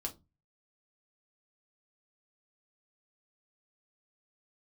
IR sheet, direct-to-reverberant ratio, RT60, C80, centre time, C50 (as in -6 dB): 1.5 dB, 0.25 s, 26.5 dB, 10 ms, 17.5 dB